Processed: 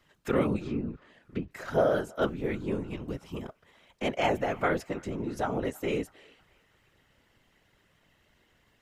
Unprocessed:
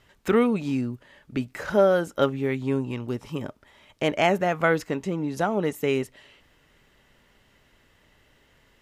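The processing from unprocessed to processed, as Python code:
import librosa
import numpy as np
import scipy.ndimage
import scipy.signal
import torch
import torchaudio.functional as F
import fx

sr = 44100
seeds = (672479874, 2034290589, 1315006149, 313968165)

y = fx.whisperise(x, sr, seeds[0])
y = fx.env_lowpass_down(y, sr, base_hz=1600.0, full_db=-22.0, at=(0.6, 1.51))
y = fx.echo_banded(y, sr, ms=320, feedback_pct=54, hz=1500.0, wet_db=-23)
y = y * librosa.db_to_amplitude(-6.0)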